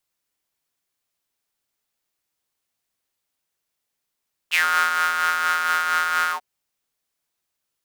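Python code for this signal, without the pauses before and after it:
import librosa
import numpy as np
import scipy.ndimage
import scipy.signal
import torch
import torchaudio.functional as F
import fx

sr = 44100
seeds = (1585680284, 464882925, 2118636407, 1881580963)

y = fx.sub_patch_tremolo(sr, seeds[0], note=40, wave='triangle', wave2='square', interval_st=0, detune_cents=27, level2_db=-1, sub_db=-15.0, noise_db=-22.5, kind='highpass', cutoff_hz=740.0, q=7.7, env_oct=2.0, env_decay_s=0.13, env_sustain_pct=45, attack_ms=30.0, decay_s=0.47, sustain_db=-3.5, release_s=0.09, note_s=1.8, lfo_hz=4.3, tremolo_db=4.0)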